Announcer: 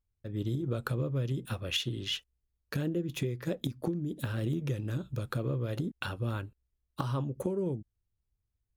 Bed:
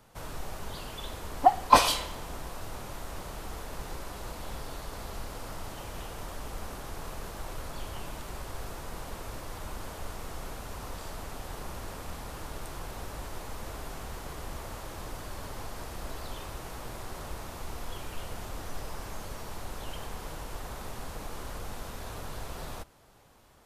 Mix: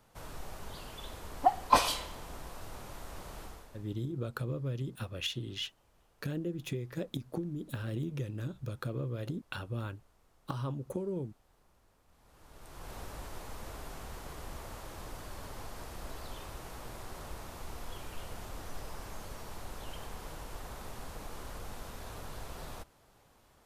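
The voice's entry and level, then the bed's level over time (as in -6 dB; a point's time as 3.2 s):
3.50 s, -4.0 dB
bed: 3.43 s -5.5 dB
4.06 s -28.5 dB
12.06 s -28.5 dB
12.92 s -4.5 dB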